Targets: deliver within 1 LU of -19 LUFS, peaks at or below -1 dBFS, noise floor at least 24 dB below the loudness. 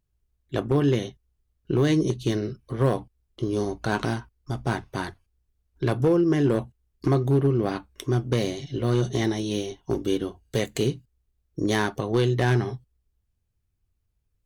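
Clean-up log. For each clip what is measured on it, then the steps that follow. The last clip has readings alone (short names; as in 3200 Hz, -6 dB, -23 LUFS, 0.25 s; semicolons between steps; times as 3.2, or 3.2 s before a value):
clipped 0.6%; flat tops at -14.0 dBFS; loudness -25.5 LUFS; peak -14.0 dBFS; loudness target -19.0 LUFS
-> clip repair -14 dBFS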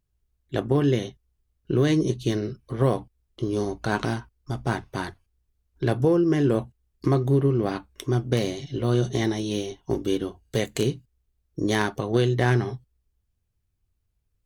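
clipped 0.0%; loudness -25.5 LUFS; peak -6.5 dBFS; loudness target -19.0 LUFS
-> gain +6.5 dB; limiter -1 dBFS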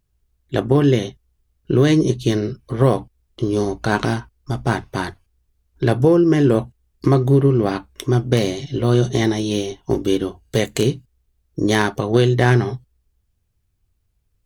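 loudness -19.0 LUFS; peak -1.0 dBFS; noise floor -68 dBFS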